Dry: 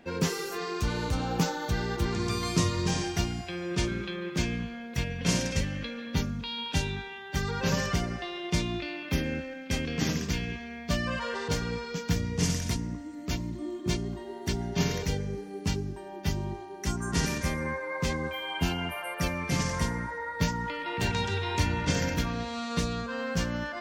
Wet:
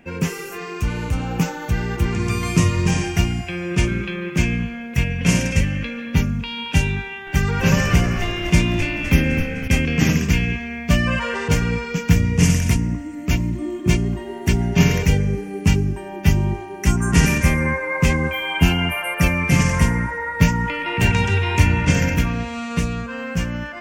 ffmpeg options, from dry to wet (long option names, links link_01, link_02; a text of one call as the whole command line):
ffmpeg -i in.wav -filter_complex "[0:a]asettb=1/sr,asplit=3[link_01][link_02][link_03];[link_01]atrim=end=7.014[link_04];[link_02]atrim=start=7.01:end=9.68,asetpts=PTS-STARTPTS,afade=type=in:duration=0.004:curve=qsin,afade=type=out:start_time=2.666:duration=0.004:curve=qsin,asplit=8[link_05][link_06][link_07][link_08][link_09][link_10][link_11][link_12];[link_06]adelay=255,afreqshift=-71,volume=-11dB[link_13];[link_07]adelay=510,afreqshift=-142,volume=-15.3dB[link_14];[link_08]adelay=765,afreqshift=-213,volume=-19.6dB[link_15];[link_09]adelay=1020,afreqshift=-284,volume=-23.9dB[link_16];[link_10]adelay=1275,afreqshift=-355,volume=-28.2dB[link_17];[link_11]adelay=1530,afreqshift=-426,volume=-32.5dB[link_18];[link_12]adelay=1785,afreqshift=-497,volume=-36.8dB[link_19];[link_05][link_13][link_14][link_15][link_16][link_17][link_18][link_19]amix=inputs=8:normalize=0,atrim=end_sample=117747[link_20];[link_03]atrim=start=9.676[link_21];[link_04][link_20]acrossfade=duration=0.004:curve1=hsin:curve2=qsin[link_22];[link_22][link_21]acrossfade=duration=0.004:curve1=qsin:curve2=hsin,bass=frequency=250:gain=7,treble=frequency=4000:gain=12,dynaudnorm=framelen=410:gausssize=11:maxgain=11.5dB,highshelf=frequency=3200:width_type=q:width=3:gain=-7.5,volume=1dB" out.wav